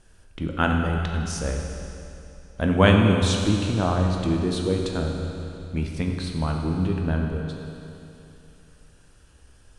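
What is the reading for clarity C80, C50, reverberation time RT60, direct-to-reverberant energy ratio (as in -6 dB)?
3.5 dB, 2.5 dB, 2.9 s, 1.0 dB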